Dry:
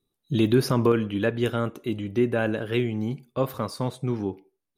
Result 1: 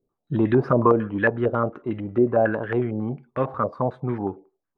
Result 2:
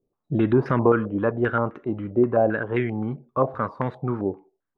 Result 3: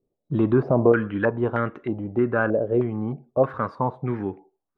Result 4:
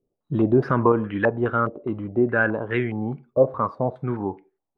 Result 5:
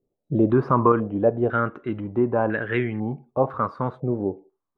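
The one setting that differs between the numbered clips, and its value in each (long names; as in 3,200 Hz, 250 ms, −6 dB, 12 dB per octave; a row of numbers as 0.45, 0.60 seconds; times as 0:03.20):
low-pass on a step sequencer, speed: 11, 7.6, 3.2, 4.8, 2 Hertz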